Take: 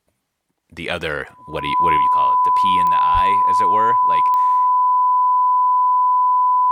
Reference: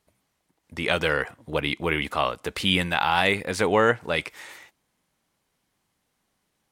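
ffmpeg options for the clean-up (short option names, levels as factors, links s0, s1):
-filter_complex "[0:a]adeclick=t=4,bandreject=f=1000:w=30,asplit=3[s0][s1][s2];[s0]afade=t=out:st=3.13:d=0.02[s3];[s1]highpass=f=140:w=0.5412,highpass=f=140:w=1.3066,afade=t=in:st=3.13:d=0.02,afade=t=out:st=3.25:d=0.02[s4];[s2]afade=t=in:st=3.25:d=0.02[s5];[s3][s4][s5]amix=inputs=3:normalize=0,asetnsamples=n=441:p=0,asendcmd='1.97 volume volume 6.5dB',volume=1"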